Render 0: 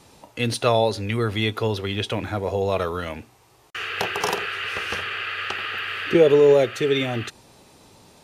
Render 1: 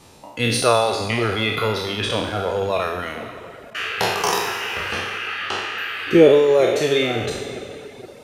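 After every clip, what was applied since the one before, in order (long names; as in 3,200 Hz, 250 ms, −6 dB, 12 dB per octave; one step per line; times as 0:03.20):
peak hold with a decay on every bin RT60 2.54 s
tape delay 466 ms, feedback 52%, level −15.5 dB, low-pass 2,400 Hz
reverb reduction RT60 1.2 s
level +1.5 dB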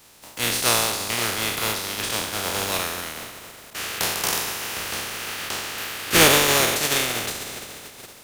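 compressing power law on the bin magnitudes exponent 0.28
level −3.5 dB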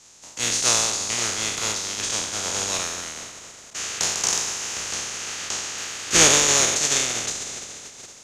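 low-pass with resonance 6,700 Hz, resonance Q 5.1
level −4 dB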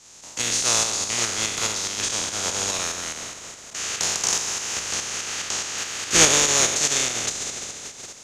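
in parallel at −2 dB: downward compressor, threshold −30 dBFS, peak gain reduction 18 dB
on the sum: shaped tremolo saw up 4.8 Hz, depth 45%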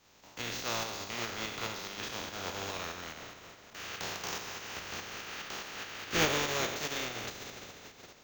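high-frequency loss of the air 190 metres
flanger 0.27 Hz, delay 9.7 ms, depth 5.9 ms, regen −61%
bad sample-rate conversion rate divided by 2×, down filtered, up hold
level −3 dB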